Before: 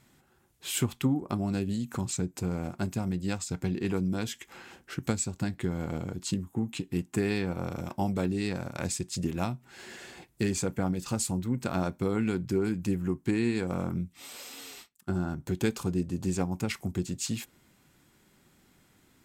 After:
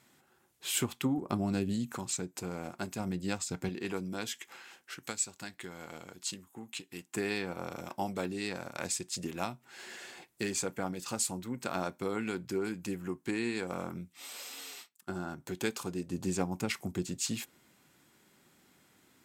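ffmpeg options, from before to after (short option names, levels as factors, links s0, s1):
-af "asetnsamples=n=441:p=0,asendcmd='1.18 highpass f 130;1.92 highpass f 500;2.99 highpass f 240;3.69 highpass f 570;4.56 highpass f 1500;7.15 highpass f 540;16.1 highpass f 230',highpass=f=310:p=1"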